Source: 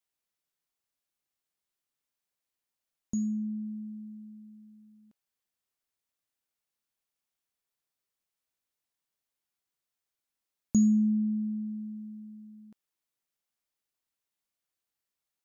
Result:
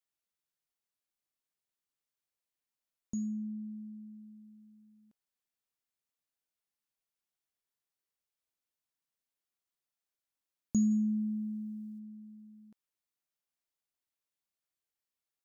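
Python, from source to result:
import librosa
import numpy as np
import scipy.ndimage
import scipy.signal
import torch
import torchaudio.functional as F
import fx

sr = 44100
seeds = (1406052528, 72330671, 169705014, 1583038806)

y = fx.high_shelf(x, sr, hz=2400.0, db=10.5, at=(10.9, 11.98), fade=0.02)
y = y * 10.0 ** (-5.0 / 20.0)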